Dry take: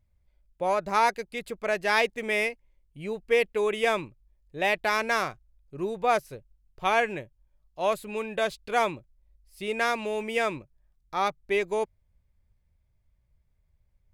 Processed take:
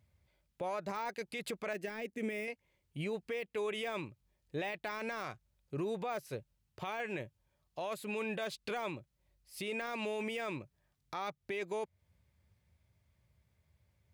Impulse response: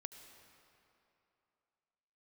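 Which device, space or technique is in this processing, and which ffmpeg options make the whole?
broadcast voice chain: -filter_complex "[0:a]highpass=frequency=76:width=0.5412,highpass=frequency=76:width=1.3066,deesser=0.75,acompressor=threshold=-35dB:ratio=5,equalizer=frequency=3300:width_type=o:width=2.2:gain=3,alimiter=level_in=9dB:limit=-24dB:level=0:latency=1:release=10,volume=-9dB,asettb=1/sr,asplit=3[link_01][link_02][link_03];[link_01]atrim=end=1.734[link_04];[link_02]atrim=start=1.73:end=2.48,asetpts=PTS-STARTPTS,afade=type=in:duration=0.004:curve=qsin,afade=type=out:start_time=0.746:duration=0.004:curve=qsin,equalizer=frequency=125:width_type=o:width=1:gain=-10,equalizer=frequency=250:width_type=o:width=1:gain=9,equalizer=frequency=1000:width_type=o:width=1:gain=-11,equalizer=frequency=4000:width_type=o:width=1:gain=-8[link_05];[link_03]atrim=start=2.476[link_06];[link_04][link_05]acrossfade=duration=0.004:curve1=hsin:curve2=qsin[link_07];[link_07][link_06]acrossfade=duration=0.004:curve1=qsin:curve2=hsin,volume=3.5dB"

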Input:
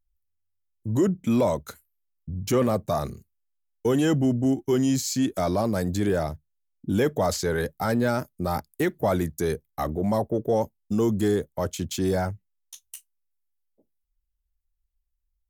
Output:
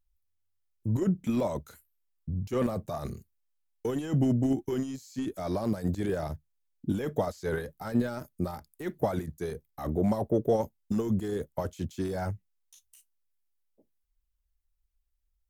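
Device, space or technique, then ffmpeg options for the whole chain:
de-esser from a sidechain: -filter_complex "[0:a]asplit=2[link_01][link_02];[link_02]highpass=5400,apad=whole_len=683511[link_03];[link_01][link_03]sidechaincompress=threshold=-52dB:ratio=10:attack=1.3:release=21"

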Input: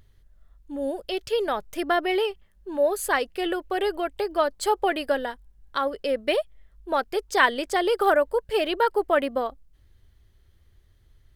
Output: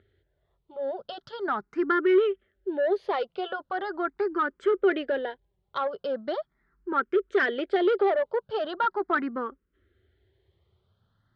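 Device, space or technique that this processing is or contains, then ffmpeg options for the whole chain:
barber-pole phaser into a guitar amplifier: -filter_complex "[0:a]asplit=2[link_01][link_02];[link_02]afreqshift=0.4[link_03];[link_01][link_03]amix=inputs=2:normalize=1,asoftclip=type=tanh:threshold=-22dB,highpass=110,equalizer=frequency=210:width_type=q:width=4:gain=3,equalizer=frequency=380:width_type=q:width=4:gain=9,equalizer=frequency=1400:width_type=q:width=4:gain=8,equalizer=frequency=2600:width_type=q:width=4:gain=-7,lowpass=frequency=3700:width=0.5412,lowpass=frequency=3700:width=1.3066"

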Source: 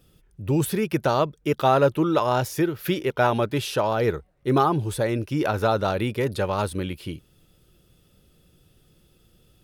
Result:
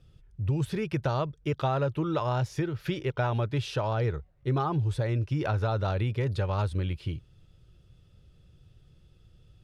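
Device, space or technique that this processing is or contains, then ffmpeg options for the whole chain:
jukebox: -af "lowpass=5800,lowshelf=frequency=160:width_type=q:width=1.5:gain=8.5,acompressor=threshold=-19dB:ratio=4,volume=-5dB"

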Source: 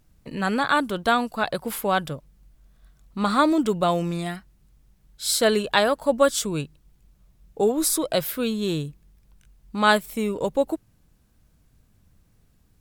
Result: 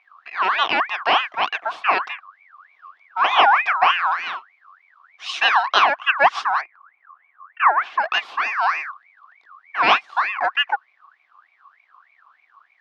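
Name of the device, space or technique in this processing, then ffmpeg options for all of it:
voice changer toy: -filter_complex "[0:a]aeval=exprs='val(0)*sin(2*PI*1700*n/s+1700*0.35/3.3*sin(2*PI*3.3*n/s))':channel_layout=same,highpass=480,equalizer=frequency=520:width_type=q:width=4:gain=-8,equalizer=frequency=740:width_type=q:width=4:gain=9,equalizer=frequency=1100:width_type=q:width=4:gain=10,equalizer=frequency=2000:width_type=q:width=4:gain=-6,lowpass=frequency=4000:width=0.5412,lowpass=frequency=4000:width=1.3066,asettb=1/sr,asplit=3[link_01][link_02][link_03];[link_01]atrim=end=6.614[link_04];[link_02]atrim=start=6.61:end=8,asetpts=PTS-STARTPTS,afade=type=in:duration=0.004:curve=qsin,afade=type=out:start_time=1.386:duration=0.004:curve=qsin,lowpass=2000[link_05];[link_03]atrim=start=7.996[link_06];[link_04][link_05]acrossfade=duration=0.004:curve1=hsin:curve2=qsin[link_07];[link_07][link_06]acrossfade=duration=0.004:curve1=qsin:curve2=hsin,volume=5dB"

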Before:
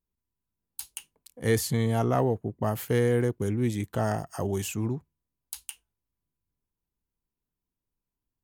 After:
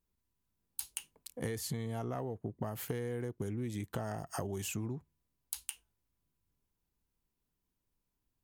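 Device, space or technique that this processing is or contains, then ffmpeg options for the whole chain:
serial compression, leveller first: -af "acompressor=threshold=-27dB:ratio=2.5,acompressor=threshold=-38dB:ratio=6,volume=3dB"

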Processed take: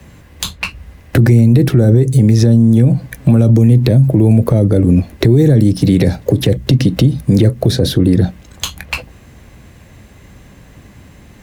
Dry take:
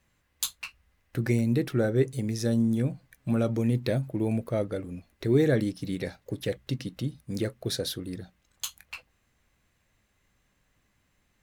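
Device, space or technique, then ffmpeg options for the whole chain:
mastering chain: -filter_complex "[0:a]highpass=47,equalizer=frequency=1300:width_type=o:width=0.3:gain=-3,acrossover=split=130|380|5000[link_01][link_02][link_03][link_04];[link_01]acompressor=threshold=-32dB:ratio=4[link_05];[link_02]acompressor=threshold=-37dB:ratio=4[link_06];[link_03]acompressor=threshold=-42dB:ratio=4[link_07];[link_04]acompressor=threshold=-50dB:ratio=4[link_08];[link_05][link_06][link_07][link_08]amix=inputs=4:normalize=0,acompressor=threshold=-37dB:ratio=2,asoftclip=type=tanh:threshold=-22.5dB,tiltshelf=frequency=740:gain=5.5,alimiter=level_in=30dB:limit=-1dB:release=50:level=0:latency=1,volume=-1dB"

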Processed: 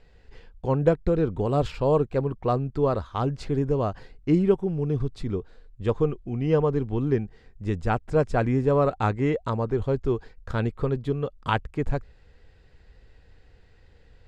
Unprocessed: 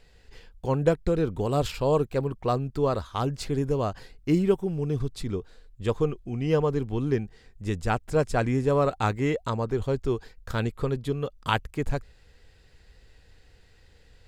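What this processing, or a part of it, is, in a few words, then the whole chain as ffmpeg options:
through cloth: -af "lowpass=8400,highshelf=frequency=3000:gain=-11.5,volume=2dB"

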